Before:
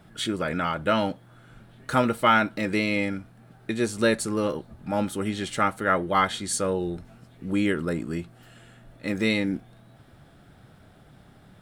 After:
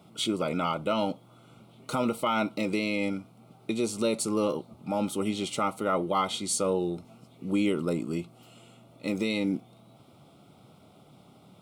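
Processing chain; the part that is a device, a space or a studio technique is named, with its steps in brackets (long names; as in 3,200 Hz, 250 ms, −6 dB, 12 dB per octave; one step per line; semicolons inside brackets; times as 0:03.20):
PA system with an anti-feedback notch (high-pass filter 150 Hz 12 dB per octave; Butterworth band-reject 1,700 Hz, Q 2; brickwall limiter −17 dBFS, peak gain reduction 8.5 dB)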